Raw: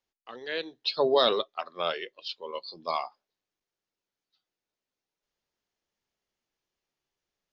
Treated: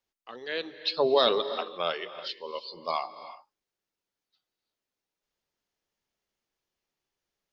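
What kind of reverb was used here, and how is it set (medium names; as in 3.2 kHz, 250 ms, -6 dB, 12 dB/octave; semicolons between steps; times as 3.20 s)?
gated-style reverb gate 380 ms rising, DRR 12 dB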